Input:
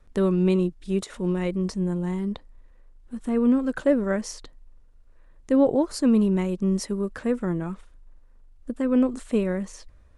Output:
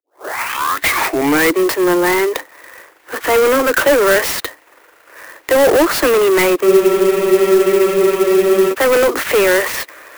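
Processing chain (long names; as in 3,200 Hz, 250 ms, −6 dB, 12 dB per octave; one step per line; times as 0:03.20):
turntable start at the beginning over 1.61 s
Butterworth high-pass 290 Hz 96 dB per octave
parametric band 2,000 Hz +9 dB 1.2 octaves
mid-hump overdrive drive 31 dB, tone 2,900 Hz, clips at −10 dBFS
frozen spectrum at 0:06.69, 2.03 s
converter with an unsteady clock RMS 0.038 ms
level +5.5 dB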